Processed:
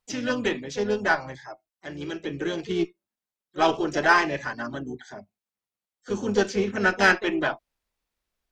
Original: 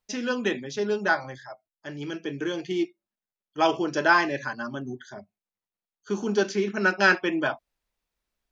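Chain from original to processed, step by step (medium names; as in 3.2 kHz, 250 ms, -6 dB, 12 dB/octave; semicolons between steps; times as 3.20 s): Chebyshev shaper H 6 -29 dB, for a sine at -6 dBFS; harmony voices -12 st -15 dB, +3 st -9 dB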